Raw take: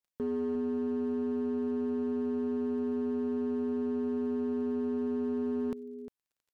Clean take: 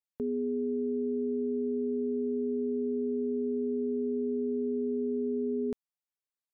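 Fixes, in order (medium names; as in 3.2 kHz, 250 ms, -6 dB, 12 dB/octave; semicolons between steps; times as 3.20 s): clip repair -27.5 dBFS; de-click; inverse comb 353 ms -12 dB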